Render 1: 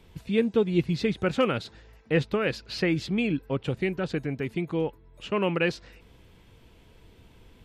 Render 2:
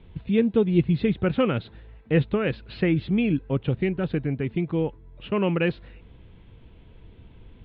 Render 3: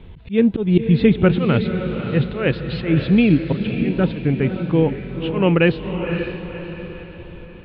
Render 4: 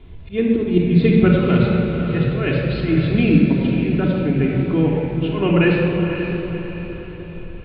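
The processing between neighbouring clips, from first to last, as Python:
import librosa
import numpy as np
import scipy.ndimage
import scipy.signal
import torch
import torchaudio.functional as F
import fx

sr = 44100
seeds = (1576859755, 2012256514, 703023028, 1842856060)

y1 = scipy.signal.sosfilt(scipy.signal.butter(8, 3800.0, 'lowpass', fs=sr, output='sos'), x)
y1 = fx.low_shelf(y1, sr, hz=310.0, db=9.0)
y1 = F.gain(torch.from_numpy(y1), -1.5).numpy()
y2 = fx.auto_swell(y1, sr, attack_ms=159.0)
y2 = fx.echo_diffused(y2, sr, ms=536, feedback_pct=46, wet_db=-7.5)
y2 = F.gain(torch.from_numpy(y2), 8.5).numpy()
y3 = fx.room_shoebox(y2, sr, seeds[0], volume_m3=3300.0, walls='mixed', distance_m=3.2)
y3 = F.gain(torch.from_numpy(y3), -4.5).numpy()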